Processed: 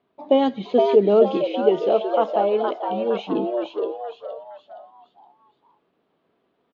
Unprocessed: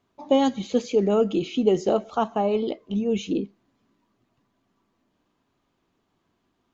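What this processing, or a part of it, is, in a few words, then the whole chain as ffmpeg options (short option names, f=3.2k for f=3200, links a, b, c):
frequency-shifting delay pedal into a guitar cabinet: -filter_complex "[0:a]asplit=6[a][b][c][d][e][f];[b]adelay=467,afreqshift=130,volume=-5dB[g];[c]adelay=934,afreqshift=260,volume=-13dB[h];[d]adelay=1401,afreqshift=390,volume=-20.9dB[i];[e]adelay=1868,afreqshift=520,volume=-28.9dB[j];[f]adelay=2335,afreqshift=650,volume=-36.8dB[k];[a][g][h][i][j][k]amix=inputs=6:normalize=0,highpass=100,equalizer=f=100:t=q:w=4:g=-8,equalizer=f=430:t=q:w=4:g=6,equalizer=f=650:t=q:w=4:g=6,lowpass=f=3.9k:w=0.5412,lowpass=f=3.9k:w=1.3066,asettb=1/sr,asplit=3[l][m][n];[l]atrim=end=1.374[o];[m]atrim=start=1.37:end=3.27,asetpts=PTS-STARTPTS,afade=t=in:d=0.004:c=qsin,afade=t=out:st=1.896:d=0.004:c=qsin,lowshelf=f=280:g=-10[p];[n]atrim=start=3.266[q];[o][p]acrossfade=d=0.004:c1=hsin:c2=qsin[r];[r][q]acrossfade=d=0.004:c1=qsin:c2=hsin"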